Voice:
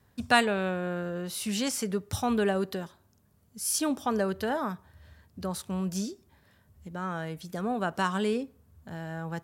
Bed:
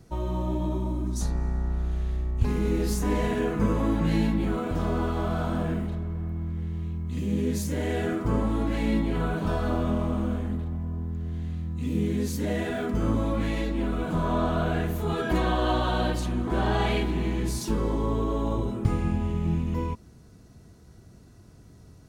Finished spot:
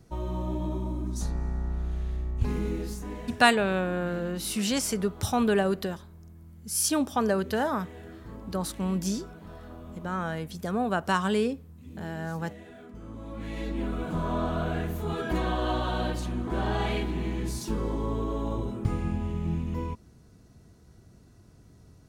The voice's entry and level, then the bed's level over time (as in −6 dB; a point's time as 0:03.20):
3.10 s, +2.5 dB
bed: 0:02.57 −3 dB
0:03.46 −18 dB
0:13.09 −18 dB
0:13.71 −3.5 dB